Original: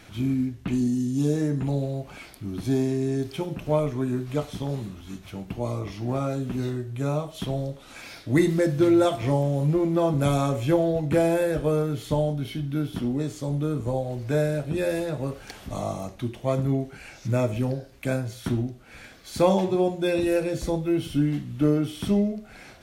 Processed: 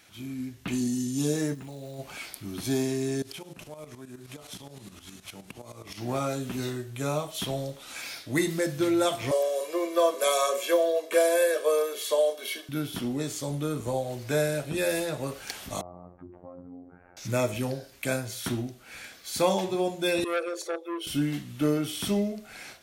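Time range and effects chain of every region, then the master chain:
0:01.53–0:01.98: output level in coarse steps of 18 dB + surface crackle 430 per second −53 dBFS
0:03.22–0:05.98: variable-slope delta modulation 64 kbit/s + downward compressor 12 to 1, threshold −33 dBFS + shaped tremolo saw up 9.6 Hz, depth 75%
0:09.31–0:12.69: Butterworth high-pass 240 Hz 72 dB per octave + comb filter 1.8 ms, depth 95%
0:15.81–0:17.17: downward compressor, threshold −34 dBFS + Bessel low-pass filter 810 Hz, order 6 + phases set to zero 88.9 Hz
0:20.24–0:21.07: spectral envelope exaggerated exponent 1.5 + Butterworth high-pass 350 Hz 96 dB per octave + saturating transformer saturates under 1,100 Hz
whole clip: spectral tilt +2.5 dB per octave; automatic gain control gain up to 10 dB; level −9 dB

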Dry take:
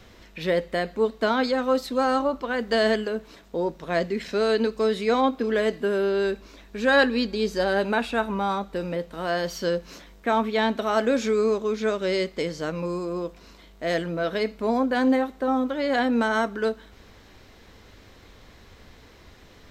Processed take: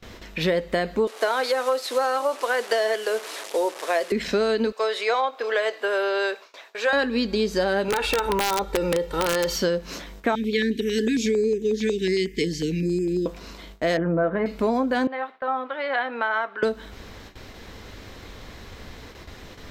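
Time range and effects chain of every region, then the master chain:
0:01.07–0:04.12: linear delta modulator 64 kbit/s, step −36 dBFS + high-pass filter 420 Hz 24 dB per octave
0:04.72–0:06.93: high-pass filter 540 Hz 24 dB per octave + high-shelf EQ 6,800 Hz −7.5 dB
0:07.88–0:09.56: comb filter 2.2 ms, depth 83% + downward compressor 16 to 1, threshold −23 dBFS + wrap-around overflow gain 20 dB
0:10.35–0:13.26: Chebyshev band-stop filter 450–1,700 Hz, order 5 + notch on a step sequencer 11 Hz 560–4,100 Hz
0:13.97–0:14.46: low-pass filter 1,700 Hz 24 dB per octave + comb filter 5.8 ms, depth 51% + one half of a high-frequency compander decoder only
0:15.07–0:16.63: high-pass filter 950 Hz + high-frequency loss of the air 450 metres
whole clip: noise gate with hold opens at −40 dBFS; downward compressor, threshold −28 dBFS; level +8.5 dB

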